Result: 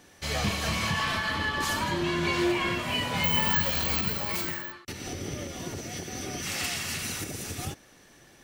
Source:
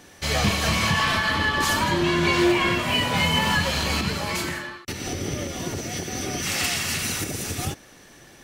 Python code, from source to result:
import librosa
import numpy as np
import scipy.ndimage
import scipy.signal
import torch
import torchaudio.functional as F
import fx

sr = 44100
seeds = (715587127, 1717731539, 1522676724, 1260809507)

y = fx.resample_bad(x, sr, factor=2, down='filtered', up='zero_stuff', at=(3.24, 4.72))
y = y * librosa.db_to_amplitude(-6.5)